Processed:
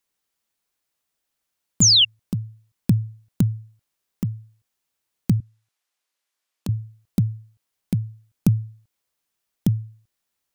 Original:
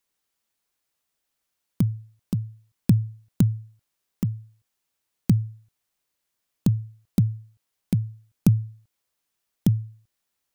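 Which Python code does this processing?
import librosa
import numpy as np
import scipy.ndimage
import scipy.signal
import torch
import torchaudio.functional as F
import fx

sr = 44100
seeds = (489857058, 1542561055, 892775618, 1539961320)

y = fx.spec_paint(x, sr, seeds[0], shape='fall', start_s=1.81, length_s=0.24, low_hz=2700.0, high_hz=7400.0, level_db=-14.0)
y = fx.weighting(y, sr, curve='A', at=(5.4, 6.69))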